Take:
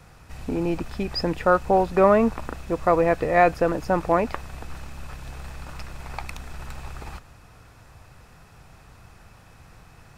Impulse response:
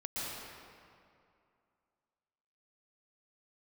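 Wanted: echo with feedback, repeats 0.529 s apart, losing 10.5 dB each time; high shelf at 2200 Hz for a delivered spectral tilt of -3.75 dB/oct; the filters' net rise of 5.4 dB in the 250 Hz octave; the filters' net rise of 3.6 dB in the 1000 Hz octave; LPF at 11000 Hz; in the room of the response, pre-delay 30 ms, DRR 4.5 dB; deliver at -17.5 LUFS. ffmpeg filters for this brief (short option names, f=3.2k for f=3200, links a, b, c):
-filter_complex "[0:a]lowpass=11k,equalizer=f=250:t=o:g=7.5,equalizer=f=1k:t=o:g=5.5,highshelf=f=2.2k:g=-4,aecho=1:1:529|1058|1587:0.299|0.0896|0.0269,asplit=2[a][b];[1:a]atrim=start_sample=2205,adelay=30[c];[b][c]afir=irnorm=-1:irlink=0,volume=-8dB[d];[a][d]amix=inputs=2:normalize=0"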